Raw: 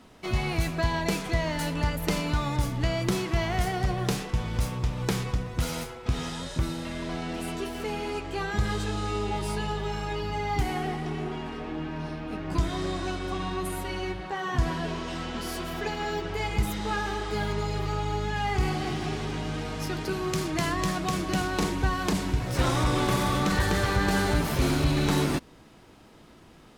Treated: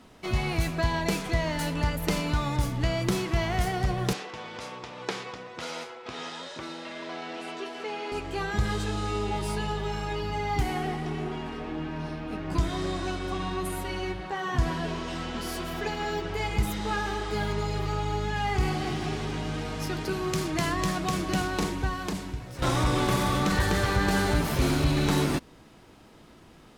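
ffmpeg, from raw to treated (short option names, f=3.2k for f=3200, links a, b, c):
-filter_complex "[0:a]asettb=1/sr,asplit=3[a][b][c];[a]atrim=end=4.134[d];[b]atrim=start=4.13:end=8.12,asetpts=PTS-STARTPTS,afade=t=in:d=0.004:c=qsin,afade=t=out:st=3.986:d=0.004:c=qsin,highpass=400,lowpass=5.2k[e];[c]atrim=start=8.116[f];[d][e]acrossfade=d=0.004:c1=hsin:c2=qsin[g];[g][f]acrossfade=d=0.004:c1=qsin:c2=hsin,asplit=2[h][i];[h]atrim=end=22.62,asetpts=PTS-STARTPTS,afade=t=out:st=21.38:d=1.24:silence=0.211349[j];[i]atrim=start=22.62,asetpts=PTS-STARTPTS,afade=t=in:d=0.004:c=hsin:silence=0.211349[k];[j][k]concat=n=2:v=0:a=1"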